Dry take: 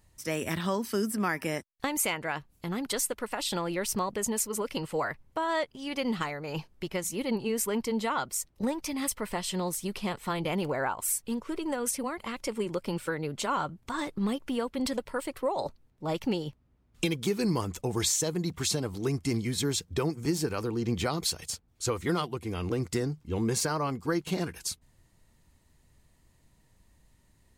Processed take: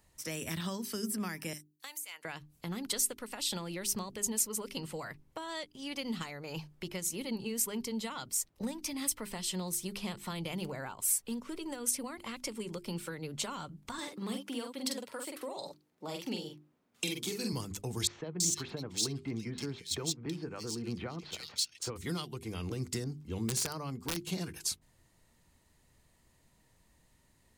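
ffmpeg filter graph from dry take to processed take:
ffmpeg -i in.wav -filter_complex "[0:a]asettb=1/sr,asplit=3[link_01][link_02][link_03];[link_01]atrim=end=1.534[link_04];[link_02]atrim=start=1.53:end=2.25,asetpts=PTS-STARTPTS,afade=type=in:duration=0.004:curve=qsin,afade=type=out:start_time=0.716:duration=0.004:curve=qsin,aderivative,acompressor=threshold=-37dB:ratio=12:attack=3.2:release=140:knee=1:detection=peak[link_05];[link_03]atrim=start=2.246[link_06];[link_04][link_05]acrossfade=duration=0.004:curve1=hsin:curve2=qsin[link_07];[link_07][link_06]acrossfade=duration=0.004:curve1=qsin:curve2=hsin,asettb=1/sr,asplit=3[link_08][link_09][link_10];[link_08]atrim=end=13.984[link_11];[link_09]atrim=start=13.98:end=17.53,asetpts=PTS-STARTPTS,afade=type=in:duration=0.004:curve=qsin,afade=type=out:start_time=3.546:duration=0.004:curve=qsin,highpass=230,asplit=2[link_12][link_13];[link_13]adelay=46,volume=-4dB[link_14];[link_12][link_14]amix=inputs=2:normalize=0,atrim=end_sample=156555[link_15];[link_10]atrim=start=17.526[link_16];[link_11][link_15]acrossfade=duration=0.004:curve1=hsin:curve2=qsin[link_17];[link_17][link_16]acrossfade=duration=0.004:curve1=qsin:curve2=hsin,asettb=1/sr,asplit=3[link_18][link_19][link_20];[link_18]atrim=end=18.074[link_21];[link_19]atrim=start=18.07:end=21.96,asetpts=PTS-STARTPTS,afade=type=in:duration=0.004:curve=qsin,afade=type=out:start_time=3.886:duration=0.004:curve=qsin,highpass=frequency=170:poles=1,adynamicsmooth=sensitivity=8:basefreq=3600,acrossover=split=2500[link_22][link_23];[link_23]adelay=330[link_24];[link_22][link_24]amix=inputs=2:normalize=0,atrim=end_sample=171549[link_25];[link_20]atrim=start=21.956[link_26];[link_21][link_25]acrossfade=duration=0.004:curve1=hsin:curve2=qsin[link_27];[link_27][link_26]acrossfade=duration=0.004:curve1=qsin:curve2=hsin,asettb=1/sr,asplit=3[link_28][link_29][link_30];[link_28]atrim=end=23.044[link_31];[link_29]atrim=start=23.04:end=24.17,asetpts=PTS-STARTPTS,afade=type=in:duration=0.004:curve=qsin,afade=type=out:start_time=1.126:duration=0.004:curve=qsin,aeval=exprs='(mod(10*val(0)+1,2)-1)/10':channel_layout=same,adynamicequalizer=threshold=0.00708:dfrequency=1800:dqfactor=0.7:tfrequency=1800:tqfactor=0.7:attack=5:release=100:ratio=0.375:range=2.5:mode=cutabove:tftype=highshelf[link_32];[link_30]atrim=start=24.166[link_33];[link_31][link_32]acrossfade=duration=0.004:curve1=hsin:curve2=qsin[link_34];[link_34][link_33]acrossfade=duration=0.004:curve1=qsin:curve2=hsin,lowshelf=frequency=120:gain=-7,bandreject=frequency=50:width_type=h:width=6,bandreject=frequency=100:width_type=h:width=6,bandreject=frequency=150:width_type=h:width=6,bandreject=frequency=200:width_type=h:width=6,bandreject=frequency=250:width_type=h:width=6,bandreject=frequency=300:width_type=h:width=6,bandreject=frequency=350:width_type=h:width=6,bandreject=frequency=400:width_type=h:width=6,acrossover=split=220|3000[link_35][link_36][link_37];[link_36]acompressor=threshold=-43dB:ratio=4[link_38];[link_35][link_38][link_37]amix=inputs=3:normalize=0" out.wav

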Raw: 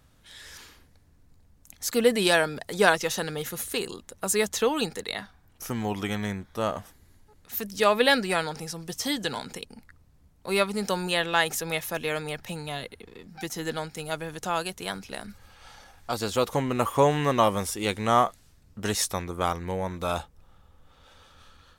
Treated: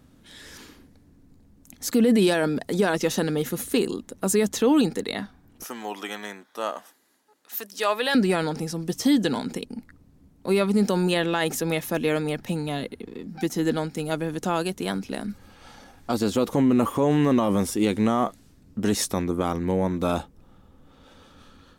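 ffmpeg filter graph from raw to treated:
ffmpeg -i in.wav -filter_complex "[0:a]asettb=1/sr,asplit=3[link_01][link_02][link_03];[link_01]atrim=end=5.644[link_04];[link_02]atrim=start=5.64:end=8.15,asetpts=PTS-STARTPTS,afade=type=in:duration=0.004:curve=qsin,afade=type=out:start_time=2.506:duration=0.004:curve=qsin,highpass=770,bandreject=frequency=2200:width=16[link_05];[link_03]atrim=start=8.146[link_06];[link_04][link_05]acrossfade=duration=0.004:curve1=hsin:curve2=qsin[link_07];[link_07][link_06]acrossfade=duration=0.004:curve1=qsin:curve2=hsin,equalizer=frequency=260:width=0.89:gain=14,alimiter=limit=-12dB:level=0:latency=1:release=27" out.wav

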